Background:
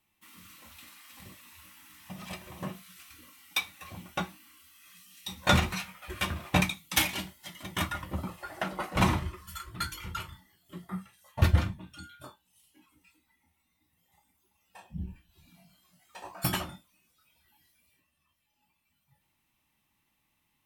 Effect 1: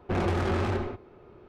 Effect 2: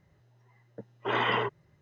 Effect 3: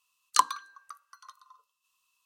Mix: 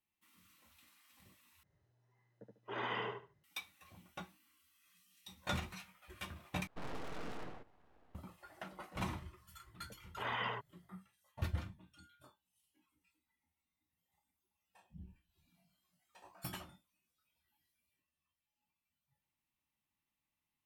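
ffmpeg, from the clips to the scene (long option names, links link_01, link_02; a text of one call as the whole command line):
ffmpeg -i bed.wav -i cue0.wav -i cue1.wav -filter_complex "[2:a]asplit=2[link_01][link_02];[0:a]volume=-15.5dB[link_03];[link_01]aecho=1:1:73|146|219:0.668|0.154|0.0354[link_04];[1:a]aeval=exprs='abs(val(0))':channel_layout=same[link_05];[link_02]equalizer=frequency=360:width_type=o:width=0.59:gain=-13[link_06];[link_03]asplit=3[link_07][link_08][link_09];[link_07]atrim=end=1.634[link_10];[link_04]atrim=end=1.81,asetpts=PTS-STARTPTS,volume=-14dB[link_11];[link_08]atrim=start=3.436:end=6.674[link_12];[link_05]atrim=end=1.48,asetpts=PTS-STARTPTS,volume=-14.5dB[link_13];[link_09]atrim=start=8.146[link_14];[link_06]atrim=end=1.81,asetpts=PTS-STARTPTS,volume=-10.5dB,afade=type=in:duration=0.004:curve=hsin,afade=type=out:start_time=1.806:duration=0.004:curve=hsin,adelay=9120[link_15];[link_10][link_11]acrossfade=duration=0.004:curve1=hsin:curve2=hsin[link_16];[link_16][link_12]acrossfade=duration=0.004:curve1=hsin:curve2=hsin[link_17];[link_17][link_13]acrossfade=duration=0.004:curve1=hsin:curve2=hsin[link_18];[link_18][link_14]acrossfade=duration=0.004:curve1=hsin:curve2=hsin[link_19];[link_19][link_15]amix=inputs=2:normalize=0" out.wav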